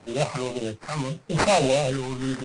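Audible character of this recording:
a quantiser's noise floor 10 bits, dither triangular
phaser sweep stages 4, 0.82 Hz, lowest notch 510–3,900 Hz
aliases and images of a low sample rate 3,300 Hz, jitter 20%
MP3

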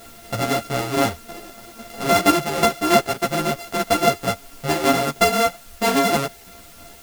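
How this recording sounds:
a buzz of ramps at a fixed pitch in blocks of 64 samples
tremolo saw down 3.1 Hz, depth 55%
a quantiser's noise floor 8 bits, dither triangular
a shimmering, thickened sound

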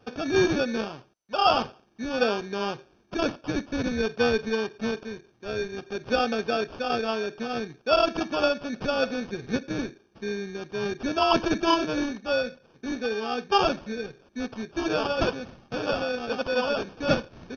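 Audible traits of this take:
aliases and images of a low sample rate 2,000 Hz, jitter 0%
MP2

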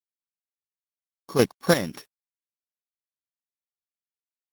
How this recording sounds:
a buzz of ramps at a fixed pitch in blocks of 8 samples
chopped level 3.6 Hz, depth 65%, duty 25%
a quantiser's noise floor 10 bits, dither none
Opus

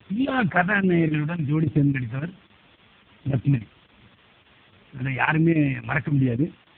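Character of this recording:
phaser sweep stages 2, 1.3 Hz, lowest notch 360–1,100 Hz
a quantiser's noise floor 8 bits, dither triangular
chopped level 3.6 Hz, depth 65%, duty 90%
AMR narrowband

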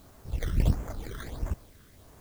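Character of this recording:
aliases and images of a low sample rate 2,700 Hz, jitter 0%
phaser sweep stages 12, 1.5 Hz, lowest notch 760–4,200 Hz
a quantiser's noise floor 10 bits, dither triangular

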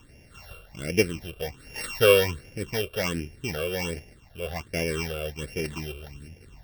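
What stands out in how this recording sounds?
a buzz of ramps at a fixed pitch in blocks of 16 samples
phaser sweep stages 8, 1.3 Hz, lowest notch 250–1,200 Hz

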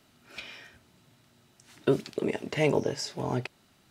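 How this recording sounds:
background noise floor −64 dBFS
spectral slope −5.0 dB per octave

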